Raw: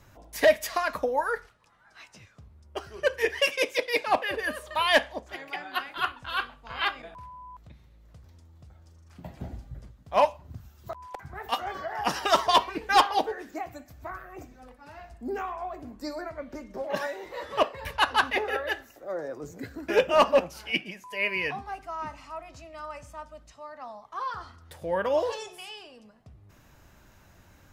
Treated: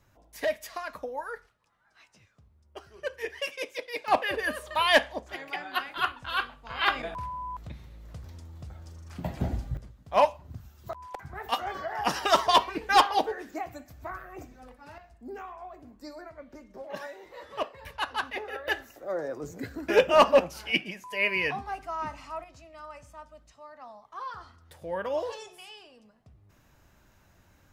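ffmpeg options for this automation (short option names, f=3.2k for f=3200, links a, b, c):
-af "asetnsamples=n=441:p=0,asendcmd='4.08 volume volume 0.5dB;6.88 volume volume 8.5dB;9.77 volume volume 0dB;14.98 volume volume -8dB;18.68 volume volume 1.5dB;22.44 volume volume -5dB',volume=-9dB"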